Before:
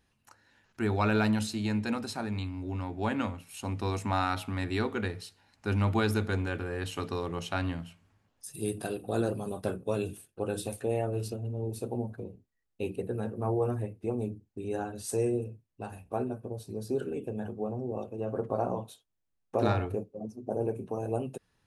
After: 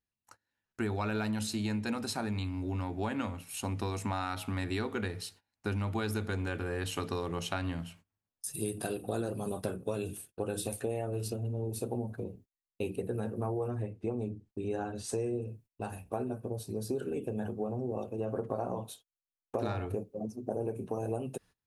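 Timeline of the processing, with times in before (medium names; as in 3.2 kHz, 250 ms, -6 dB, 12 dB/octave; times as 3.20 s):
13.68–15.48 s: distance through air 71 m
whole clip: gate -56 dBFS, range -24 dB; treble shelf 8.2 kHz +6 dB; compression, threshold -32 dBFS; trim +2 dB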